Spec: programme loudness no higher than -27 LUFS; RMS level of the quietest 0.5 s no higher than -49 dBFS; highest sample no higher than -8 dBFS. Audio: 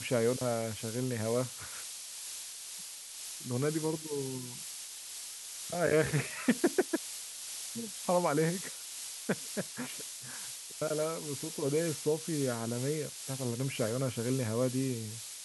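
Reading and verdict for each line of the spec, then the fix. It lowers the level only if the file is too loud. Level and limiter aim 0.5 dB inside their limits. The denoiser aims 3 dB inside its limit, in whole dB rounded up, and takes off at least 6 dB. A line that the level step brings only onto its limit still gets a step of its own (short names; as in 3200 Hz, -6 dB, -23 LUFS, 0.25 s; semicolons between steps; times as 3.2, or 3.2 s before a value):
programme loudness -34.5 LUFS: OK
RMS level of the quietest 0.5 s -45 dBFS: fail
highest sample -14.0 dBFS: OK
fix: denoiser 7 dB, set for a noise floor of -45 dBFS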